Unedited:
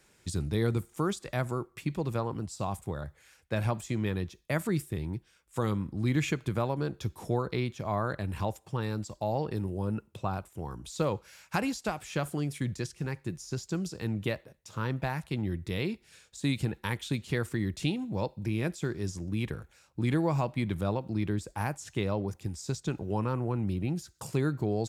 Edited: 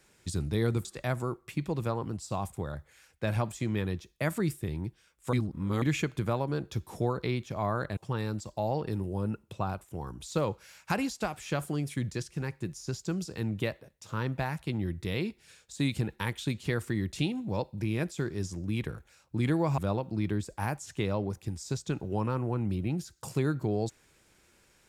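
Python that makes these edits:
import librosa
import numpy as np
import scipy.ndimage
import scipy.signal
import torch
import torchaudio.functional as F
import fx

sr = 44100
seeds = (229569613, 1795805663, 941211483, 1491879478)

y = fx.edit(x, sr, fx.cut(start_s=0.85, length_s=0.29),
    fx.reverse_span(start_s=5.62, length_s=0.49),
    fx.cut(start_s=8.26, length_s=0.35),
    fx.cut(start_s=20.42, length_s=0.34), tone=tone)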